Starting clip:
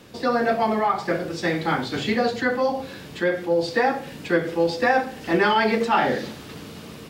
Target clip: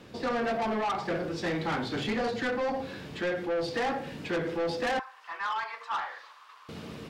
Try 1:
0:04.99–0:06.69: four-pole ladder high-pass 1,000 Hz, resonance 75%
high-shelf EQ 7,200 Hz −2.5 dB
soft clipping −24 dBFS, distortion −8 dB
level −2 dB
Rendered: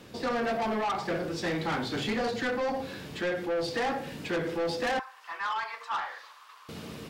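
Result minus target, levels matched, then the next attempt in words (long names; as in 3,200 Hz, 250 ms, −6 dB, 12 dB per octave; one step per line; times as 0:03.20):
8,000 Hz band +3.0 dB
0:04.99–0:06.69: four-pole ladder high-pass 1,000 Hz, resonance 75%
high-shelf EQ 7,200 Hz −13 dB
soft clipping −24 dBFS, distortion −8 dB
level −2 dB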